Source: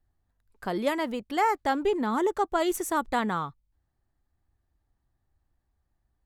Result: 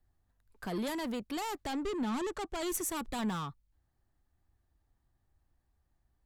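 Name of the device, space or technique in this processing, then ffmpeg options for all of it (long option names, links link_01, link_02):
one-band saturation: -filter_complex "[0:a]asettb=1/sr,asplit=3[link_01][link_02][link_03];[link_01]atrim=end=1.674[link_04];[link_02]atrim=start=1.67:end=2.63,asetpts=PTS-STARTPTS,afade=type=in:duration=0.004:curve=qsin,afade=type=out:start_time=0.956:duration=0.004:curve=qsin,lowpass=9000[link_05];[link_03]atrim=start=2.626[link_06];[link_04][link_05]acrossfade=duration=0.004:curve1=hsin:curve2=qsin[link_07];[link_07][link_06]acrossfade=duration=0.004:curve1=qsin:curve2=hsin,acrossover=split=220|3800[link_08][link_09][link_10];[link_09]asoftclip=type=tanh:threshold=-36.5dB[link_11];[link_08][link_11][link_10]amix=inputs=3:normalize=0"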